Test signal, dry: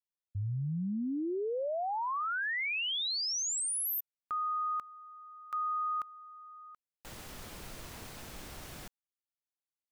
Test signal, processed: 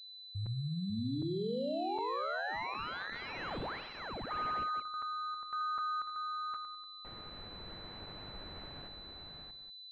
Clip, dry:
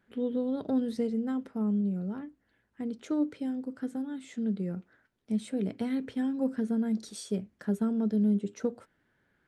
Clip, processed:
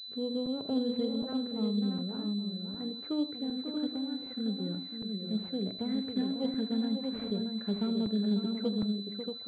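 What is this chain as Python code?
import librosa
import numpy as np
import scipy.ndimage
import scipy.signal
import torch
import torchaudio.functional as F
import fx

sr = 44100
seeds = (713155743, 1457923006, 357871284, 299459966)

y = fx.echo_multitap(x, sr, ms=(79, 545, 632, 821), db=(-11.5, -8.0, -5.5, -15.0))
y = fx.buffer_crackle(y, sr, first_s=0.46, period_s=0.76, block=256, kind='zero')
y = fx.pwm(y, sr, carrier_hz=4000.0)
y = y * 10.0 ** (-3.5 / 20.0)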